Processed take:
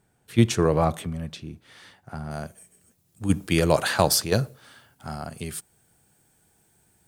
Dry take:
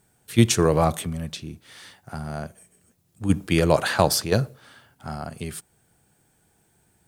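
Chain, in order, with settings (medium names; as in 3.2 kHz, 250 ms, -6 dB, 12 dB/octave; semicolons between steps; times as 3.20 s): treble shelf 4.3 kHz -8.5 dB, from 2.31 s +4.5 dB; trim -1.5 dB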